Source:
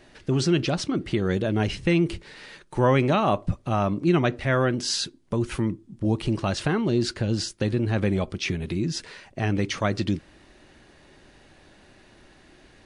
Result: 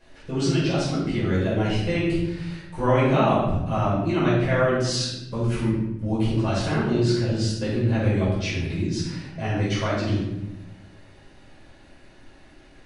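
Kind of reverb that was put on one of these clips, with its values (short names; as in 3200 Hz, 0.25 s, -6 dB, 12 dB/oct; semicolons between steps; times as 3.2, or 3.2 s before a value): shoebox room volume 350 m³, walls mixed, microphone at 5.2 m; gain -12 dB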